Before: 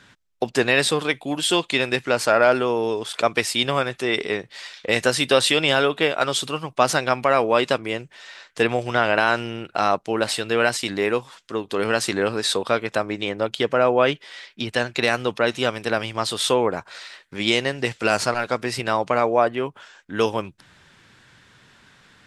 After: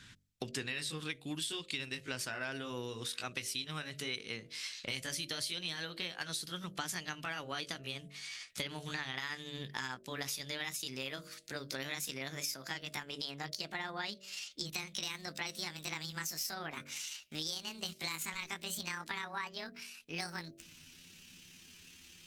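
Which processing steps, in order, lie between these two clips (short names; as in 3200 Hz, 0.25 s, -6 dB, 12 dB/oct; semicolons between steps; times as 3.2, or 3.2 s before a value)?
gliding pitch shift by +9.5 st starting unshifted; passive tone stack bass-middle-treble 6-0-2; de-hum 47.68 Hz, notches 14; compressor 5:1, threshold -52 dBFS, peak gain reduction 17 dB; gain +14.5 dB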